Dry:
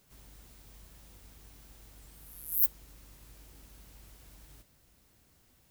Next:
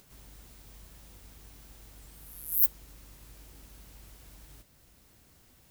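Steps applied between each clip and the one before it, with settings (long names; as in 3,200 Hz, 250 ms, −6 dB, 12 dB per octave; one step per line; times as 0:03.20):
upward compression, threshold −57 dBFS
level +2.5 dB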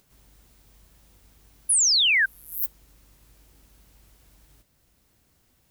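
sound drawn into the spectrogram fall, 0:01.69–0:02.26, 1,500–11,000 Hz −15 dBFS
level −4.5 dB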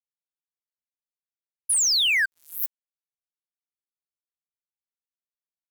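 dead-zone distortion −35.5 dBFS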